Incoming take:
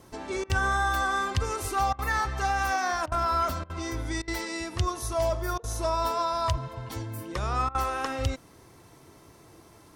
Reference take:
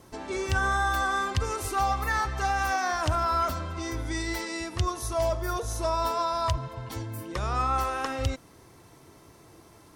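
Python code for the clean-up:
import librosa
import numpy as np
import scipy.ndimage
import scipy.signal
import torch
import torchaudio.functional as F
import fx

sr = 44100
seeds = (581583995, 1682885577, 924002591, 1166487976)

y = fx.fix_interpolate(x, sr, at_s=(0.44, 1.93, 3.06, 3.64, 4.22, 5.58, 7.69), length_ms=56.0)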